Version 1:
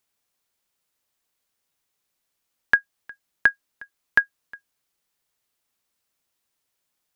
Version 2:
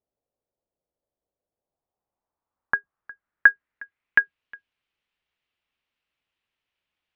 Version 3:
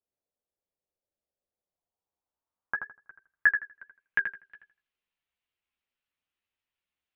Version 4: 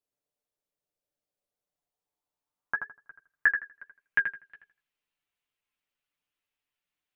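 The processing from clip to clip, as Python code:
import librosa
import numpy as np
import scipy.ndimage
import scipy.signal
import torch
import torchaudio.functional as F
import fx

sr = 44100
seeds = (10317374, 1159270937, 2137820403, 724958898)

y1 = fx.octave_divider(x, sr, octaves=2, level_db=-5.0)
y1 = fx.filter_sweep_lowpass(y1, sr, from_hz=580.0, to_hz=2800.0, start_s=1.48, end_s=4.43, q=2.4)
y1 = F.gain(torch.from_numpy(y1), -4.0).numpy()
y2 = fx.vibrato(y1, sr, rate_hz=7.3, depth_cents=71.0)
y2 = fx.chorus_voices(y2, sr, voices=4, hz=1.0, base_ms=13, depth_ms=3.3, mix_pct=40)
y2 = fx.echo_filtered(y2, sr, ms=81, feedback_pct=25, hz=2800.0, wet_db=-6.5)
y2 = F.gain(torch.from_numpy(y2), -5.0).numpy()
y3 = y2 + 0.45 * np.pad(y2, (int(6.8 * sr / 1000.0), 0))[:len(y2)]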